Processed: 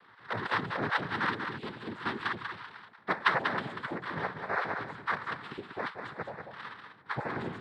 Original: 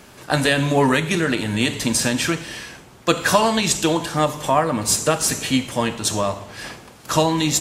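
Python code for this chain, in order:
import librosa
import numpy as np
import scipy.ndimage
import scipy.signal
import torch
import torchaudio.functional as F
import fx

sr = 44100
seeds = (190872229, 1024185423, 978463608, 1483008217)

y = fx.spec_dropout(x, sr, seeds[0], share_pct=23)
y = fx.ladder_lowpass(y, sr, hz=1600.0, resonance_pct=80)
y = fx.noise_vocoder(y, sr, seeds[1], bands=6)
y = y + 10.0 ** (-6.5 / 20.0) * np.pad(y, (int(191 * sr / 1000.0), 0))[:len(y)]
y = y * librosa.db_to_amplitude(-5.0)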